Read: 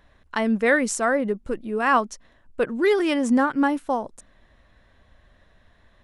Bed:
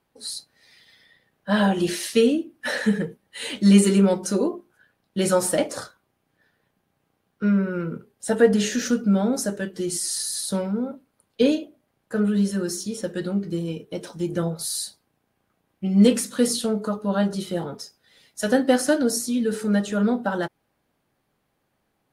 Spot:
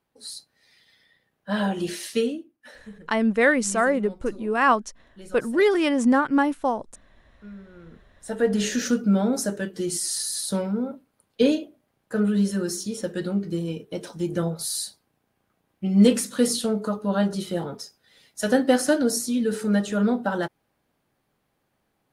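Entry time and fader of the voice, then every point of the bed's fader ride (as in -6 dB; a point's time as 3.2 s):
2.75 s, +0.5 dB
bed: 2.19 s -5 dB
2.75 s -22 dB
7.67 s -22 dB
8.68 s -0.5 dB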